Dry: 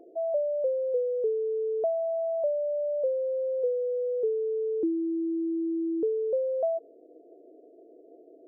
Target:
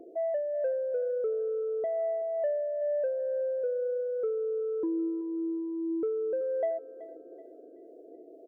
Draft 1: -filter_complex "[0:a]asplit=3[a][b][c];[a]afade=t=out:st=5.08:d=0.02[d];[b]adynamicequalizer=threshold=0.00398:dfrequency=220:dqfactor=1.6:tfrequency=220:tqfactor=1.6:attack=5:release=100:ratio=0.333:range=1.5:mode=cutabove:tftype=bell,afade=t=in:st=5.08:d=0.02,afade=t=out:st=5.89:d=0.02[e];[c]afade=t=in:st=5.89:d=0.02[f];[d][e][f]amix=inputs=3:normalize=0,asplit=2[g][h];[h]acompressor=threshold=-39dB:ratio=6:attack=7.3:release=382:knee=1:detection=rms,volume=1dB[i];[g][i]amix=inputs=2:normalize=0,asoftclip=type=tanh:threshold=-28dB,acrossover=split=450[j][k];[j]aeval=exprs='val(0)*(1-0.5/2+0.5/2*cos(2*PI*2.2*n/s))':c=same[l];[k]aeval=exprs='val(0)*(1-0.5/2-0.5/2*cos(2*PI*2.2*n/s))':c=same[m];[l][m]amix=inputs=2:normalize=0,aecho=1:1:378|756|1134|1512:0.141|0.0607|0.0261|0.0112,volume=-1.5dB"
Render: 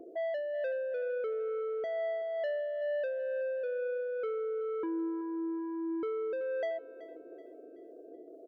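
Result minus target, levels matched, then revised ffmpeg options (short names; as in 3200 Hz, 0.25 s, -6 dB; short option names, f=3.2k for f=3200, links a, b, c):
soft clip: distortion +13 dB
-filter_complex "[0:a]asplit=3[a][b][c];[a]afade=t=out:st=5.08:d=0.02[d];[b]adynamicequalizer=threshold=0.00398:dfrequency=220:dqfactor=1.6:tfrequency=220:tqfactor=1.6:attack=5:release=100:ratio=0.333:range=1.5:mode=cutabove:tftype=bell,afade=t=in:st=5.08:d=0.02,afade=t=out:st=5.89:d=0.02[e];[c]afade=t=in:st=5.89:d=0.02[f];[d][e][f]amix=inputs=3:normalize=0,asplit=2[g][h];[h]acompressor=threshold=-39dB:ratio=6:attack=7.3:release=382:knee=1:detection=rms,volume=1dB[i];[g][i]amix=inputs=2:normalize=0,asoftclip=type=tanh:threshold=-18dB,acrossover=split=450[j][k];[j]aeval=exprs='val(0)*(1-0.5/2+0.5/2*cos(2*PI*2.2*n/s))':c=same[l];[k]aeval=exprs='val(0)*(1-0.5/2-0.5/2*cos(2*PI*2.2*n/s))':c=same[m];[l][m]amix=inputs=2:normalize=0,aecho=1:1:378|756|1134|1512:0.141|0.0607|0.0261|0.0112,volume=-1.5dB"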